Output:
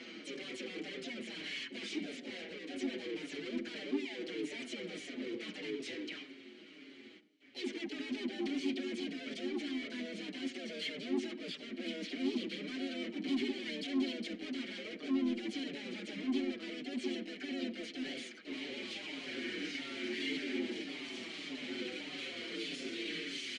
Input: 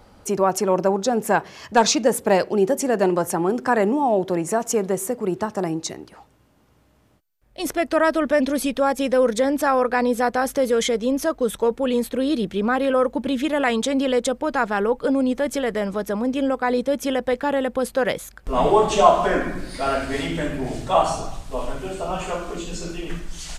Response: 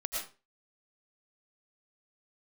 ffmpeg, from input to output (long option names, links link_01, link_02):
-filter_complex "[0:a]lowshelf=frequency=230:gain=-11,bandreject=frequency=50:width_type=h:width=6,bandreject=frequency=100:width_type=h:width=6,bandreject=frequency=150:width_type=h:width=6,areverse,acompressor=threshold=-28dB:ratio=12,areverse,asplit=2[link_01][link_02];[link_02]highpass=frequency=720:poles=1,volume=23dB,asoftclip=type=tanh:threshold=-18.5dB[link_03];[link_01][link_03]amix=inputs=2:normalize=0,lowpass=frequency=4100:poles=1,volume=-6dB,aresample=16000,volume=35.5dB,asoftclip=hard,volume=-35.5dB,aresample=44100,asplit=3[link_04][link_05][link_06];[link_04]bandpass=frequency=270:width_type=q:width=8,volume=0dB[link_07];[link_05]bandpass=frequency=2290:width_type=q:width=8,volume=-6dB[link_08];[link_06]bandpass=frequency=3010:width_type=q:width=8,volume=-9dB[link_09];[link_07][link_08][link_09]amix=inputs=3:normalize=0,asplit=2[link_10][link_11];[link_11]adelay=95,lowpass=frequency=1100:poles=1,volume=-12dB,asplit=2[link_12][link_13];[link_13]adelay=95,lowpass=frequency=1100:poles=1,volume=0.52,asplit=2[link_14][link_15];[link_15]adelay=95,lowpass=frequency=1100:poles=1,volume=0.52,asplit=2[link_16][link_17];[link_17]adelay=95,lowpass=frequency=1100:poles=1,volume=0.52,asplit=2[link_18][link_19];[link_19]adelay=95,lowpass=frequency=1100:poles=1,volume=0.52[link_20];[link_10][link_12][link_14][link_16][link_18][link_20]amix=inputs=6:normalize=0,asoftclip=type=tanh:threshold=-38dB,asplit=3[link_21][link_22][link_23];[link_22]asetrate=37084,aresample=44100,atempo=1.18921,volume=-11dB[link_24];[link_23]asetrate=58866,aresample=44100,atempo=0.749154,volume=-4dB[link_25];[link_21][link_24][link_25]amix=inputs=3:normalize=0,asplit=2[link_26][link_27];[link_27]adelay=5.5,afreqshift=-1.7[link_28];[link_26][link_28]amix=inputs=2:normalize=1,volume=11dB"